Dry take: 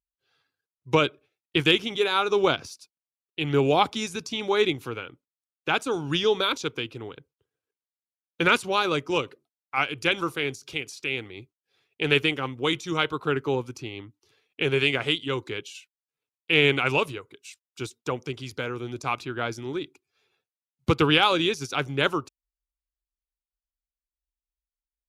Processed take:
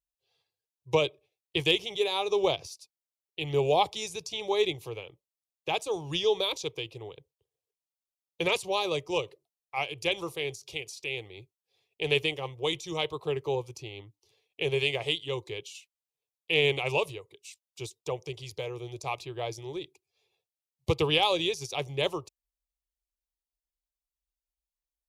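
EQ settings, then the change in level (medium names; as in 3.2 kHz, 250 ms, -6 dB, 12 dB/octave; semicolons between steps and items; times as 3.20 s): static phaser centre 600 Hz, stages 4; -1.0 dB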